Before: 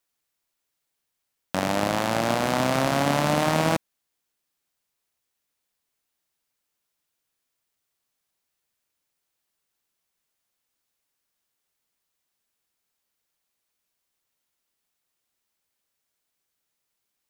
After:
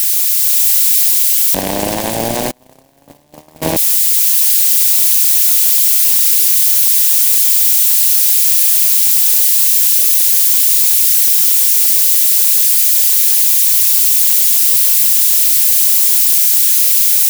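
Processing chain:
spike at every zero crossing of −13 dBFS
in parallel at −1.5 dB: brickwall limiter −14 dBFS, peak gain reduction 7.5 dB
on the sum: dynamic equaliser 390 Hz, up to +5 dB, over −31 dBFS, Q 0.77
amplitude modulation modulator 230 Hz, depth 55%
parametric band 1,300 Hz −15 dB 0.3 octaves
automatic gain control gain up to 3 dB
0:02.51–0:03.62: noise gate −12 dBFS, range −36 dB
level +2 dB

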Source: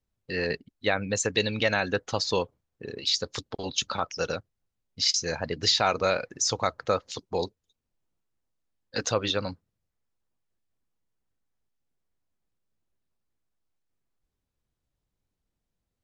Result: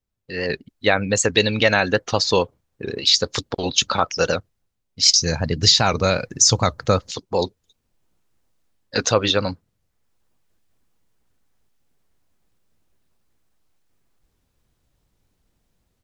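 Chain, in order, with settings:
0:05.03–0:07.11: bass and treble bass +12 dB, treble +8 dB
automatic gain control gain up to 15 dB
wow of a warped record 78 rpm, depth 100 cents
level −1 dB

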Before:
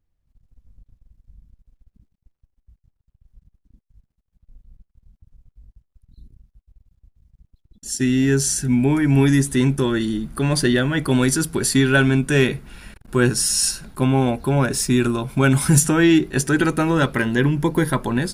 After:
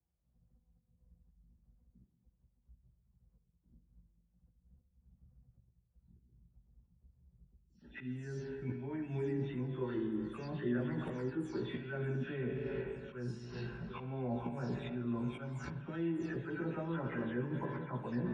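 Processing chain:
every frequency bin delayed by itself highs early, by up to 241 ms
tape delay 377 ms, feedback 64%, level −21 dB, low-pass 2,400 Hz
volume swells 301 ms
convolution reverb RT60 1.9 s, pre-delay 41 ms, DRR 7 dB
reversed playback
downward compressor 10 to 1, threshold −29 dBFS, peak gain reduction 19 dB
reversed playback
high-pass filter 100 Hz 12 dB per octave
head-to-tape spacing loss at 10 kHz 36 dB
low-pass that shuts in the quiet parts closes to 1,300 Hz, open at −31 dBFS
multi-voice chorus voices 4, 0.36 Hz, delay 17 ms, depth 1.2 ms
level −1 dB

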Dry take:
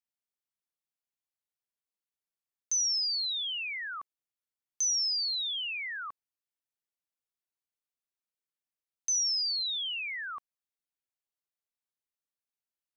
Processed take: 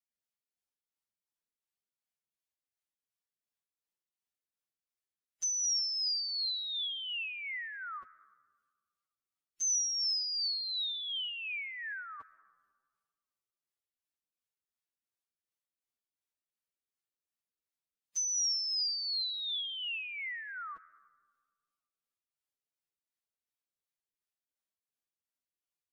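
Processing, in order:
rotating-speaker cabinet horn 5.5 Hz
comb and all-pass reverb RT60 0.95 s, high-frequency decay 0.35×, pre-delay 20 ms, DRR 17.5 dB
phase-vocoder stretch with locked phases 2×

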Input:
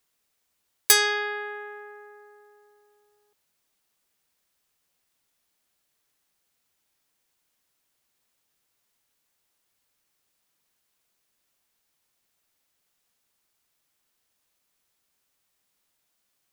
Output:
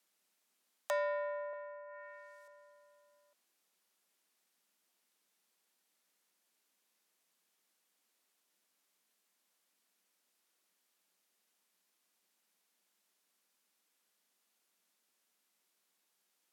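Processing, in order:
treble cut that deepens with the level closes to 680 Hz, closed at −38 dBFS
frequency shifter +170 Hz
0:01.53–0:02.48: RIAA equalisation recording
level −3 dB

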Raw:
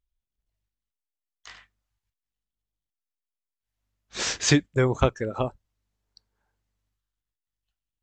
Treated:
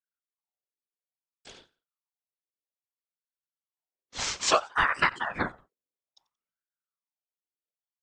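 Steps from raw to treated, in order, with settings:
noise gate with hold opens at −48 dBFS
random phases in short frames
on a send: repeating echo 89 ms, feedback 29%, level −22 dB
on the sum: ring modulator whose carrier an LFO sweeps 960 Hz, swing 60%, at 0.6 Hz

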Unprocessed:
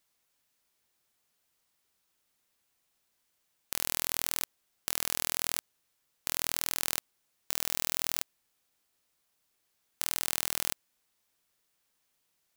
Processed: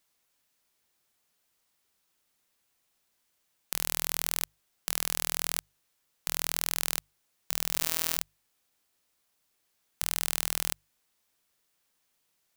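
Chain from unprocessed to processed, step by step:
mains-hum notches 50/100/150 Hz
0:07.67–0:08.16: flutter between parallel walls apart 11.5 metres, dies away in 0.62 s
level +1.5 dB

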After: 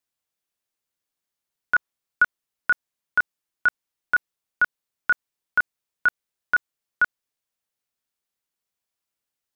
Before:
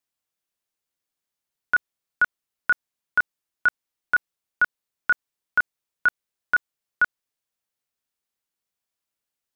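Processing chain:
0:01.76–0:02.23: dynamic equaliser 1,100 Hz, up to +5 dB, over −38 dBFS, Q 1.2

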